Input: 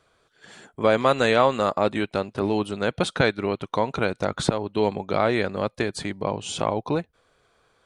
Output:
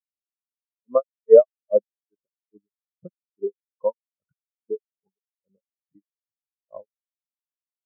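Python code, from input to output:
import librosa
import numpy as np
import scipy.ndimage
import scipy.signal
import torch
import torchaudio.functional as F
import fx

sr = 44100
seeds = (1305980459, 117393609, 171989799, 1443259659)

y = scipy.signal.sosfilt(scipy.signal.cheby1(6, 1.0, 2000.0, 'lowpass', fs=sr, output='sos'), x)
y = fx.granulator(y, sr, seeds[0], grain_ms=215.0, per_s=2.4, spray_ms=100.0, spread_st=0)
y = fx.spectral_expand(y, sr, expansion=4.0)
y = y * librosa.db_to_amplitude(6.0)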